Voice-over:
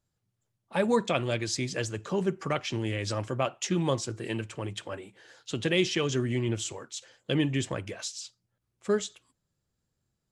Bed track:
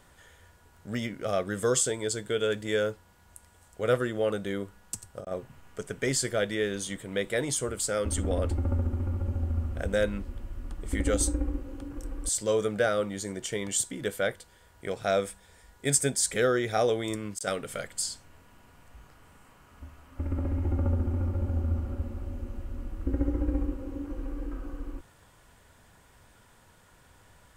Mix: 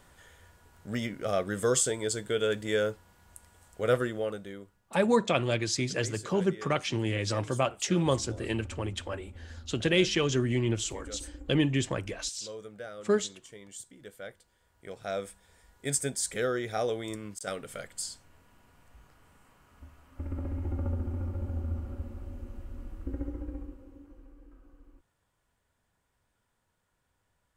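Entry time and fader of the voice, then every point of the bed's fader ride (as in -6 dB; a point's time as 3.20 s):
4.20 s, +1.0 dB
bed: 4.02 s -0.5 dB
4.83 s -16.5 dB
14.01 s -16.5 dB
15.51 s -5 dB
22.92 s -5 dB
24.37 s -19 dB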